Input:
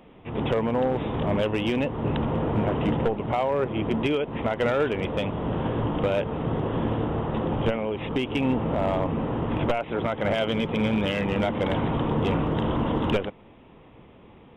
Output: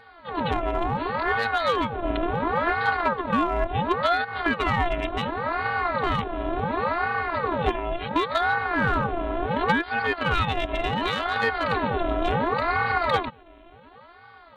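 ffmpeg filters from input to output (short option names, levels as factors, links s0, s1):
-af "afftfilt=real='hypot(re,im)*cos(PI*b)':imag='0':win_size=512:overlap=0.75,aeval=exprs='val(0)*sin(2*PI*720*n/s+720*0.6/0.7*sin(2*PI*0.7*n/s))':c=same,volume=2.51"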